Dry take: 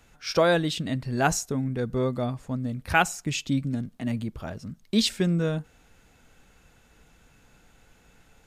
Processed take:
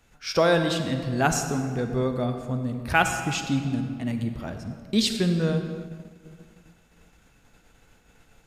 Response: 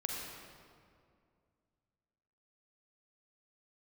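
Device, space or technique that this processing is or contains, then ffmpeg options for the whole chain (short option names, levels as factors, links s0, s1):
keyed gated reverb: -filter_complex "[0:a]asplit=3[s0][s1][s2];[1:a]atrim=start_sample=2205[s3];[s1][s3]afir=irnorm=-1:irlink=0[s4];[s2]apad=whole_len=373364[s5];[s4][s5]sidechaingate=range=0.0224:threshold=0.00158:ratio=16:detection=peak,volume=0.841[s6];[s0][s6]amix=inputs=2:normalize=0,volume=0.596"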